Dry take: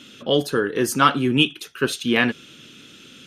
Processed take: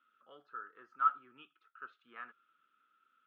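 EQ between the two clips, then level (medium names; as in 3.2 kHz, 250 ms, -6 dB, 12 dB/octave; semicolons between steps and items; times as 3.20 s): band-pass filter 1.3 kHz, Q 14; distance through air 210 m; -8.0 dB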